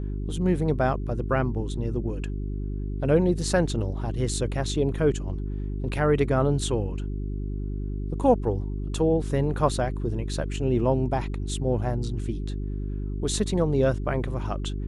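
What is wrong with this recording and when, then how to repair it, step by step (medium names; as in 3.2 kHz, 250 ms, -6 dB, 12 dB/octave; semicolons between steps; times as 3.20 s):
hum 50 Hz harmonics 8 -30 dBFS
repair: de-hum 50 Hz, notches 8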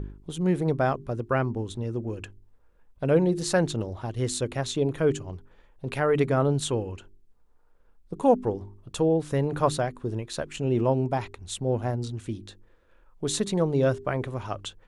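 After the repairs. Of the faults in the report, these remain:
nothing left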